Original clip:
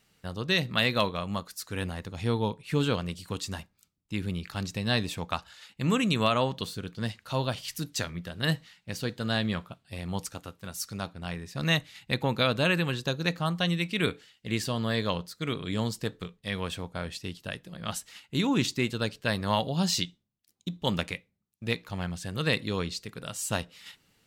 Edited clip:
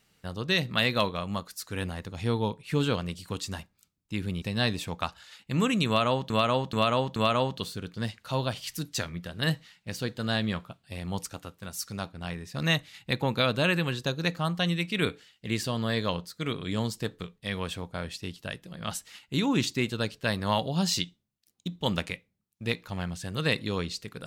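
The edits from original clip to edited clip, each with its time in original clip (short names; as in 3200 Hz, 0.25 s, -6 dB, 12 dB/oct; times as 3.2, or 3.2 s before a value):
4.42–4.72 cut
6.17–6.6 loop, 4 plays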